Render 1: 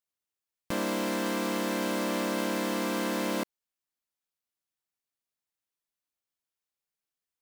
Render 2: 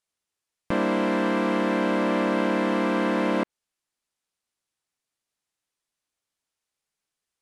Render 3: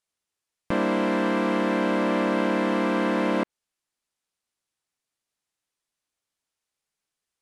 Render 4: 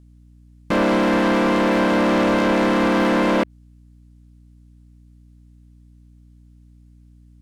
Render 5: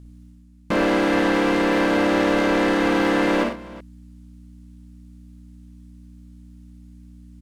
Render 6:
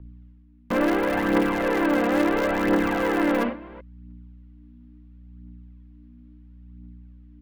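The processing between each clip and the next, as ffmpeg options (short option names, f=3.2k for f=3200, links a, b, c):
-filter_complex "[0:a]acrossover=split=2900[a][b];[b]acompressor=threshold=-56dB:ratio=4:attack=1:release=60[c];[a][c]amix=inputs=2:normalize=0,lowpass=f=11k:w=0.5412,lowpass=f=11k:w=1.3066,volume=7dB"
-af anull
-af "aeval=exprs='val(0)+0.00178*(sin(2*PI*60*n/s)+sin(2*PI*2*60*n/s)/2+sin(2*PI*3*60*n/s)/3+sin(2*PI*4*60*n/s)/4+sin(2*PI*5*60*n/s)/5)':c=same,asoftclip=type=hard:threshold=-22dB,volume=8dB"
-af "areverse,acompressor=mode=upward:threshold=-34dB:ratio=2.5,areverse,aecho=1:1:54|93|122|371:0.596|0.355|0.15|0.112,volume=-2dB"
-filter_complex "[0:a]aphaser=in_gain=1:out_gain=1:delay=4.3:decay=0.48:speed=0.73:type=triangular,acrossover=split=350|390|3100[a][b][c][d];[d]acrusher=bits=4:mix=0:aa=0.000001[e];[a][b][c][e]amix=inputs=4:normalize=0,volume=-4dB"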